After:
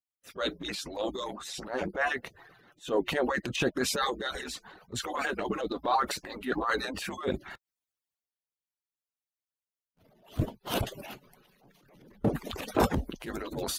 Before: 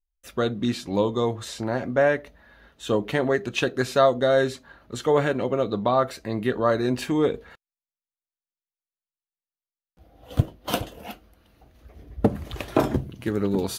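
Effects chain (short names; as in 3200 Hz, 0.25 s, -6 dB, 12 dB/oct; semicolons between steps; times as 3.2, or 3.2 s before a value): median-filter separation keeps percussive; transient shaper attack -10 dB, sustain +7 dB; 4.34–6.56 phaser 1.7 Hz, delay 4.8 ms, feedback 38%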